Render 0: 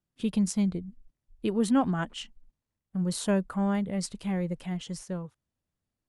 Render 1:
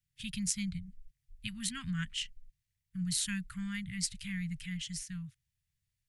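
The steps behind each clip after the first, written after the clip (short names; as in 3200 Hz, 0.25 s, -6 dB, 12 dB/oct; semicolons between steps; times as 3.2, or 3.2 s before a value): elliptic band-stop 140–1900 Hz, stop band 70 dB; gain +3.5 dB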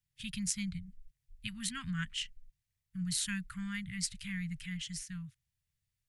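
dynamic EQ 1200 Hz, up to +4 dB, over -57 dBFS, Q 0.9; gain -1.5 dB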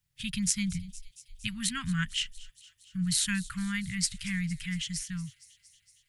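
thin delay 0.231 s, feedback 71%, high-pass 3600 Hz, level -17.5 dB; gain +6.5 dB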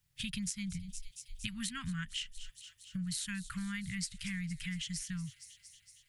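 compressor 6:1, threshold -39 dBFS, peak gain reduction 15.5 dB; gain +2.5 dB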